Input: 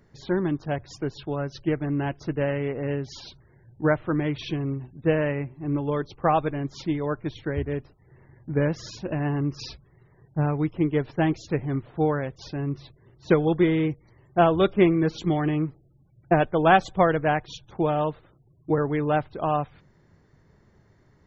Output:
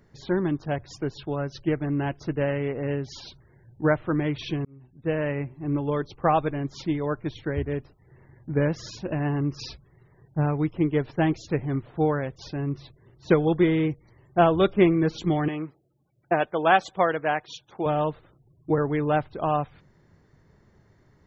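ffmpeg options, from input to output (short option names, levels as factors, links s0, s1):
-filter_complex "[0:a]asettb=1/sr,asplit=3[s0][s1][s2];[s0]atrim=end=15.484[s3];[s1]atrim=start=15.48:end=17.86,asetpts=PTS-STARTPTS,afade=t=in:d=0.004:c=qsin,afade=t=out:st=2.376:d=0.004:c=qsin,highpass=f=490:p=1[s4];[s2]atrim=start=17.856[s5];[s3][s4]acrossfade=d=0.004:c1=hsin:c2=qsin[s6];[s6][s5]acrossfade=d=0.004:c1=qsin:c2=hsin,asplit=2[s7][s8];[s7]atrim=end=4.65,asetpts=PTS-STARTPTS,afade=t=out:st=4.646:d=0.004:c=hsin[s9];[s8]atrim=start=4.65,asetpts=PTS-STARTPTS,afade=t=in:d=0.76[s10];[s9][s10]concat=n=2:v=0:a=1"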